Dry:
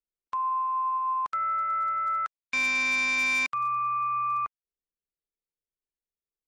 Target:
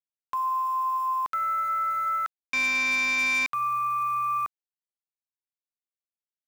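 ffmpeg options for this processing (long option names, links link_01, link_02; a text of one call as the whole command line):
ffmpeg -i in.wav -af "aeval=exprs='val(0)*gte(abs(val(0)),0.00891)':channel_layout=same,volume=1dB" out.wav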